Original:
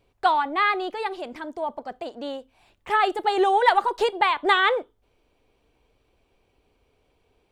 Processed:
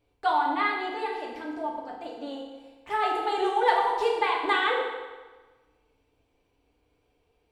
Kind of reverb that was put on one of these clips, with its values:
feedback delay network reverb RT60 1.3 s, low-frequency decay 0.95×, high-frequency decay 0.85×, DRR −2.5 dB
level −8.5 dB

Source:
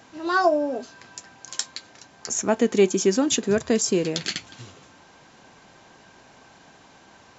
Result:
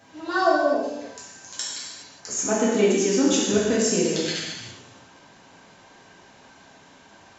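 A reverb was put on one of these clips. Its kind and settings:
reverb whose tail is shaped and stops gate 440 ms falling, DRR −6.5 dB
level −6.5 dB

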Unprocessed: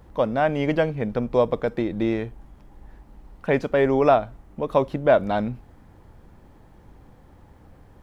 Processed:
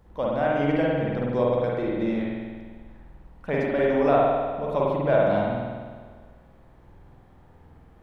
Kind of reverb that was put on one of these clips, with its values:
spring reverb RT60 1.6 s, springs 49 ms, chirp 25 ms, DRR −4.5 dB
level −7.5 dB

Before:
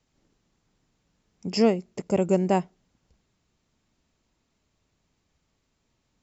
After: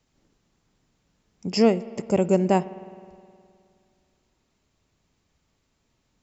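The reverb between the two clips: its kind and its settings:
spring reverb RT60 2.3 s, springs 52 ms, chirp 35 ms, DRR 16.5 dB
level +2 dB

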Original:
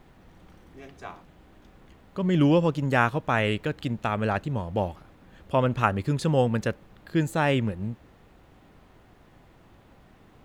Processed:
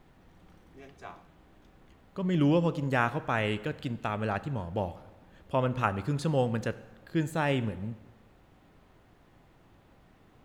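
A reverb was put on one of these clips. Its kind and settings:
dense smooth reverb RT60 1.2 s, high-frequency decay 0.75×, DRR 13.5 dB
level −5 dB

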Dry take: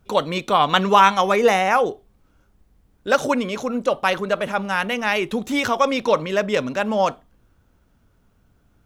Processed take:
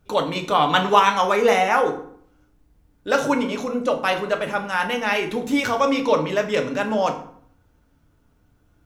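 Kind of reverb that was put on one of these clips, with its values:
feedback delay network reverb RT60 0.6 s, low-frequency decay 1.3×, high-frequency decay 0.7×, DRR 3 dB
level −2.5 dB

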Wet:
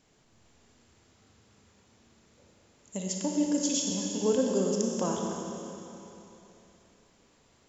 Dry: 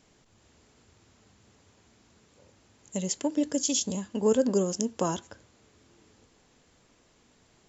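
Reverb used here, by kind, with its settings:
four-comb reverb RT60 3.2 s, combs from 27 ms, DRR 0 dB
level −4 dB

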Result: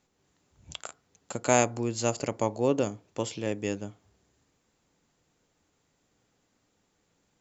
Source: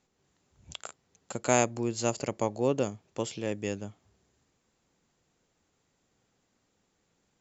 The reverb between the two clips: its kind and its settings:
feedback delay network reverb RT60 0.36 s, low-frequency decay 0.95×, high-frequency decay 0.35×, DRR 15.5 dB
level +1.5 dB

